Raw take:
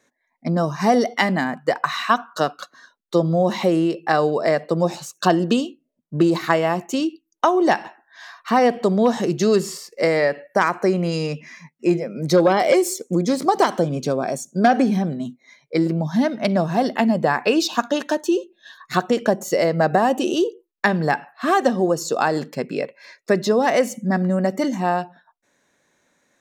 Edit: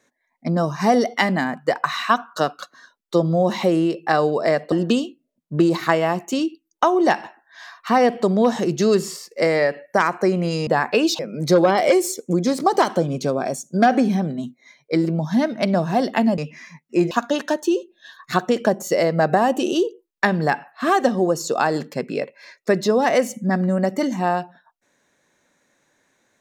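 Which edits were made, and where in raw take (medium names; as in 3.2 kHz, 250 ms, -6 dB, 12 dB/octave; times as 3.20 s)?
4.72–5.33 s: delete
11.28–12.01 s: swap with 17.20–17.72 s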